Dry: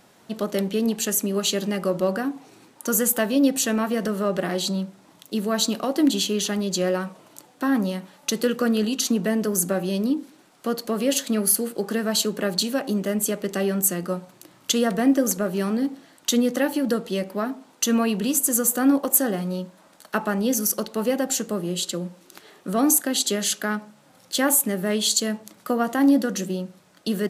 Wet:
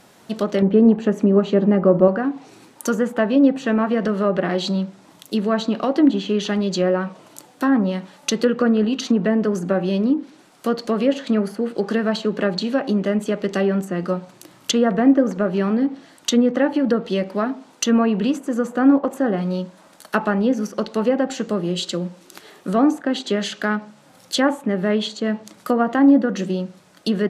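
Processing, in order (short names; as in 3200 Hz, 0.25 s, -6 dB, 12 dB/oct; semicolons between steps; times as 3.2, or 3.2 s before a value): 0.62–2.08 tilt shelf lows +6 dB, about 1400 Hz; treble ducked by the level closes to 1700 Hz, closed at -18 dBFS; gain +4.5 dB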